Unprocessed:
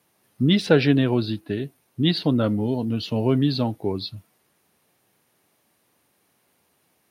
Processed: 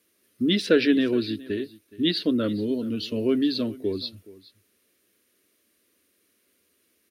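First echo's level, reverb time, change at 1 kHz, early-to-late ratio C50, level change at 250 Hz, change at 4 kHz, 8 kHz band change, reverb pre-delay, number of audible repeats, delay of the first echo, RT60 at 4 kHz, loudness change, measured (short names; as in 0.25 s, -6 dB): -20.0 dB, none, -10.0 dB, none, -2.0 dB, -0.5 dB, n/a, none, 1, 0.42 s, none, -2.5 dB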